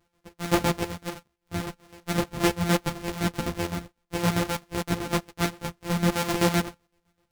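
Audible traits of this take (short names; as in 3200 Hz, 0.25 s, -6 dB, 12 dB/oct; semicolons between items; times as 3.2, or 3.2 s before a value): a buzz of ramps at a fixed pitch in blocks of 256 samples; chopped level 7.8 Hz, depth 65%, duty 50%; a shimmering, thickened sound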